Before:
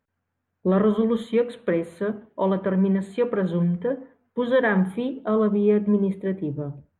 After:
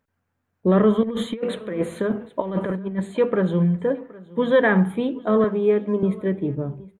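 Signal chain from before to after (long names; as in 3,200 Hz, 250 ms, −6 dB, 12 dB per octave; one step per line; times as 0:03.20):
0:01.03–0:03.00: compressor whose output falls as the input rises −26 dBFS, ratio −0.5
0:05.44–0:06.03: high-pass filter 310 Hz 12 dB per octave
single-tap delay 770 ms −21.5 dB
level +3 dB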